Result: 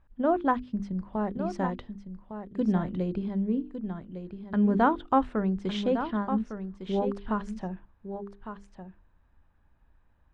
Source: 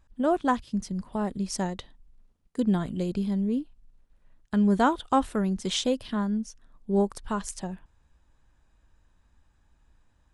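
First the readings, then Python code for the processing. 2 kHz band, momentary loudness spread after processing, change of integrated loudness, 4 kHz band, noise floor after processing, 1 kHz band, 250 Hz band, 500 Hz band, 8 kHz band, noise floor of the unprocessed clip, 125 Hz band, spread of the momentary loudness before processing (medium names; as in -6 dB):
-1.0 dB, 16 LU, -1.5 dB, -9.0 dB, -64 dBFS, +0.5 dB, -1.0 dB, -0.5 dB, under -20 dB, -67 dBFS, -1.0 dB, 14 LU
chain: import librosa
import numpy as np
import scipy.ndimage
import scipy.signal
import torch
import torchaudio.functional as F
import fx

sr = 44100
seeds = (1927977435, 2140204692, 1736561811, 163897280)

y = scipy.signal.sosfilt(scipy.signal.butter(2, 2100.0, 'lowpass', fs=sr, output='sos'), x)
y = fx.hum_notches(y, sr, base_hz=50, count=9)
y = y + 10.0 ** (-9.5 / 20.0) * np.pad(y, (int(1156 * sr / 1000.0), 0))[:len(y)]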